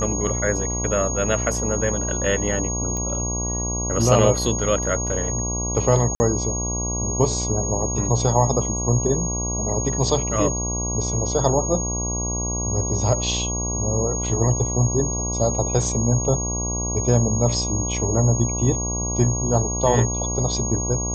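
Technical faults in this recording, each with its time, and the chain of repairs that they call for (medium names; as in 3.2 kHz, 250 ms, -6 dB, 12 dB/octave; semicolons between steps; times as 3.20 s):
buzz 60 Hz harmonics 19 -27 dBFS
whine 6.6 kHz -26 dBFS
2.97 s: pop -15 dBFS
6.15–6.20 s: dropout 50 ms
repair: de-click; de-hum 60 Hz, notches 19; band-stop 6.6 kHz, Q 30; interpolate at 6.15 s, 50 ms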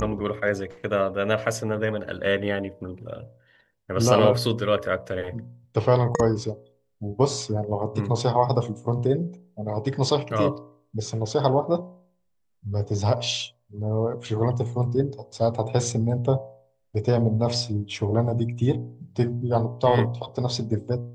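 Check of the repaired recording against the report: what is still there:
nothing left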